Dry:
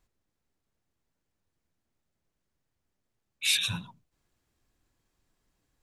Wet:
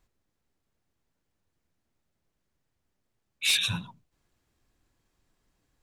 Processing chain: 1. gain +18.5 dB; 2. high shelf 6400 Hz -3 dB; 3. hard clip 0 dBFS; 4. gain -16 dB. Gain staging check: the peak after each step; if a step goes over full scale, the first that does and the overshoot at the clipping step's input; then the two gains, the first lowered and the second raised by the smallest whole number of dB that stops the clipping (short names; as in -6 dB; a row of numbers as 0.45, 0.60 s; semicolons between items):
+7.5, +6.5, 0.0, -16.0 dBFS; step 1, 6.5 dB; step 1 +11.5 dB, step 4 -9 dB